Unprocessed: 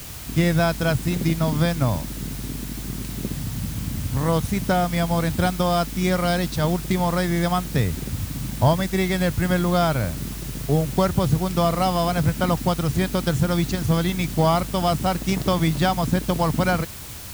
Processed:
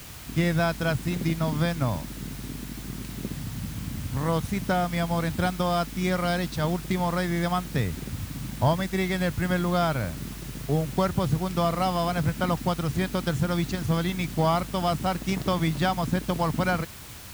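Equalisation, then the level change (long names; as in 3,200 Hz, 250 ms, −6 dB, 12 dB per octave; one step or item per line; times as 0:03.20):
low-shelf EQ 160 Hz −7.5 dB
parametric band 530 Hz −4 dB 2.2 octaves
high-shelf EQ 3,200 Hz −7.5 dB
0.0 dB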